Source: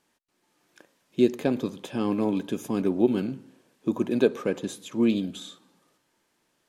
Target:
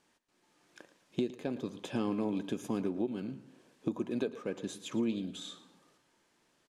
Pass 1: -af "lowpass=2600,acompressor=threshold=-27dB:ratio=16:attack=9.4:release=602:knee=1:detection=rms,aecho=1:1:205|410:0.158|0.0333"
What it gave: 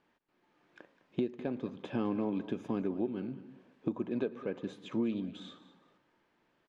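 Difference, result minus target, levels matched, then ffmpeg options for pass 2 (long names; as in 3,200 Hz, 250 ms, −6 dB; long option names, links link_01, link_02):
8,000 Hz band −17.5 dB; echo 93 ms late
-af "lowpass=9700,acompressor=threshold=-27dB:ratio=16:attack=9.4:release=602:knee=1:detection=rms,aecho=1:1:112|224:0.158|0.0333"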